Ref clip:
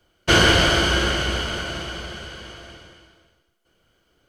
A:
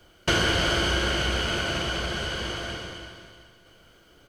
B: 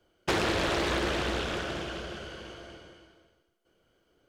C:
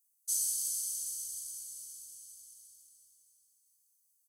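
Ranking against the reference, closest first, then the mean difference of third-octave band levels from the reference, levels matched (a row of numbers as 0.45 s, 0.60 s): B, A, C; 3.5 dB, 7.0 dB, 25.5 dB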